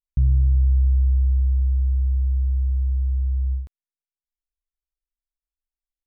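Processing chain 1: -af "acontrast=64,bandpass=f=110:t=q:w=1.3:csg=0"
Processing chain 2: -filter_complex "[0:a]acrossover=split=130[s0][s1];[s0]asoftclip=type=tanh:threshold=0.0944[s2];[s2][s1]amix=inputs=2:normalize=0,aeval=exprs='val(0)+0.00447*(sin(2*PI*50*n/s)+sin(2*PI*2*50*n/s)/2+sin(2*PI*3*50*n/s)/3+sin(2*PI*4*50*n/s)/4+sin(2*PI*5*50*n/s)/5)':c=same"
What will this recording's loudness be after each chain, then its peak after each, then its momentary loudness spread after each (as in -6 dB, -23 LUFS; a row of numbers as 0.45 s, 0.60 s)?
-20.5 LUFS, -25.5 LUFS; -8.5 dBFS, -16.5 dBFS; 6 LU, 3 LU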